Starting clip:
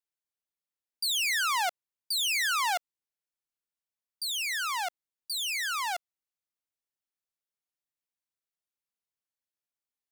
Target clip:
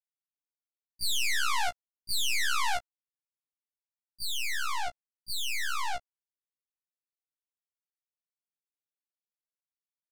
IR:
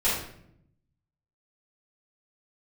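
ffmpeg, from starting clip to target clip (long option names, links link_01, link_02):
-af "aeval=exprs='0.075*(cos(1*acos(clip(val(0)/0.075,-1,1)))-cos(1*PI/2))+0.00422*(cos(3*acos(clip(val(0)/0.075,-1,1)))-cos(3*PI/2))+0.0237*(cos(4*acos(clip(val(0)/0.075,-1,1)))-cos(4*PI/2))':channel_layout=same,afftdn=noise_reduction=28:noise_floor=-47,afftfilt=real='re*1.73*eq(mod(b,3),0)':imag='im*1.73*eq(mod(b,3),0)':win_size=2048:overlap=0.75"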